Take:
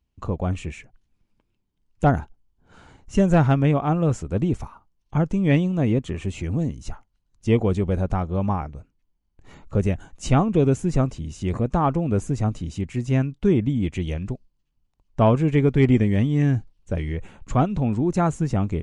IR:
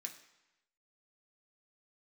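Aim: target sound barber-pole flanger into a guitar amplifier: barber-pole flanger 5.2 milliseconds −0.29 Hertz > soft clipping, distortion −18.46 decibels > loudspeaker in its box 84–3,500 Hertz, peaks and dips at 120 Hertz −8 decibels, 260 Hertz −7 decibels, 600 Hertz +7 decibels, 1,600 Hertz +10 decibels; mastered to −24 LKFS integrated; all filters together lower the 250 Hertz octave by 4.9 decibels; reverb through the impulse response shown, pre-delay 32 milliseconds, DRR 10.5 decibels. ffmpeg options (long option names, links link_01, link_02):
-filter_complex "[0:a]equalizer=frequency=250:width_type=o:gain=-3,asplit=2[link_01][link_02];[1:a]atrim=start_sample=2205,adelay=32[link_03];[link_02][link_03]afir=irnorm=-1:irlink=0,volume=-6.5dB[link_04];[link_01][link_04]amix=inputs=2:normalize=0,asplit=2[link_05][link_06];[link_06]adelay=5.2,afreqshift=-0.29[link_07];[link_05][link_07]amix=inputs=2:normalize=1,asoftclip=threshold=-14dB,highpass=84,equalizer=frequency=120:width_type=q:width=4:gain=-8,equalizer=frequency=260:width_type=q:width=4:gain=-7,equalizer=frequency=600:width_type=q:width=4:gain=7,equalizer=frequency=1600:width_type=q:width=4:gain=10,lowpass=frequency=3500:width=0.5412,lowpass=frequency=3500:width=1.3066,volume=4.5dB"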